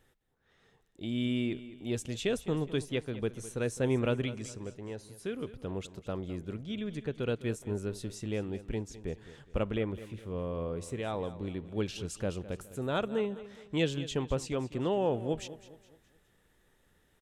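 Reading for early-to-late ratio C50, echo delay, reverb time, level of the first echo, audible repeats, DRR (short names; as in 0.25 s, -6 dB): none, 0.208 s, none, -15.5 dB, 3, none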